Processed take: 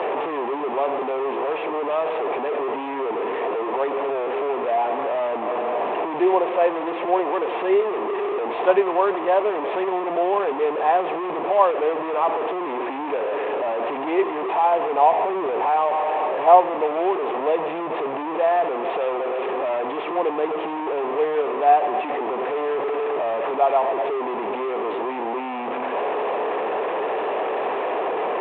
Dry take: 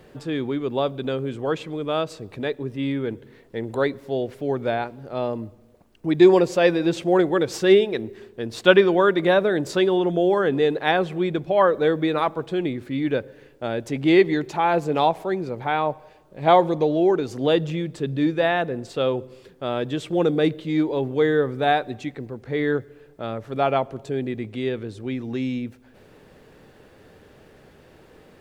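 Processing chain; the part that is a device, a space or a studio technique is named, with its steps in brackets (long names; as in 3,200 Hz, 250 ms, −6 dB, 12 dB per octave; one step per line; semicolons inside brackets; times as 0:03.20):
digital answering machine (band-pass filter 360–3,400 Hz; linear delta modulator 16 kbit/s, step −17 dBFS; loudspeaker in its box 390–3,300 Hz, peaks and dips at 420 Hz +5 dB, 720 Hz +8 dB, 1,000 Hz +7 dB, 1,500 Hz −9 dB, 2,100 Hz −6 dB, 3,000 Hz −6 dB)
0:15.12–0:15.70: low-shelf EQ 200 Hz +7.5 dB
level −2.5 dB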